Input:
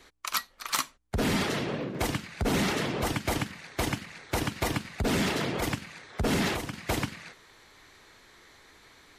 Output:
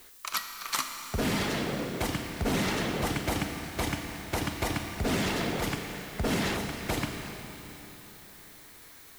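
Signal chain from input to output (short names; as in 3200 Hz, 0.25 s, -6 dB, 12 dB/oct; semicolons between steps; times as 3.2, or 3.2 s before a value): added noise blue -52 dBFS; Schroeder reverb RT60 3.8 s, combs from 27 ms, DRR 5 dB; gain -2 dB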